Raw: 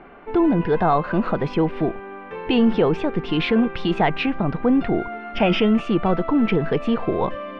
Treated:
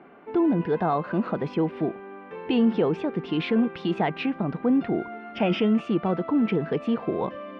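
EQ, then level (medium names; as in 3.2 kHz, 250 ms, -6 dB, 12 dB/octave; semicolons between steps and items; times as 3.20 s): high-pass 200 Hz 12 dB/octave; bass shelf 280 Hz +10 dB; -7.5 dB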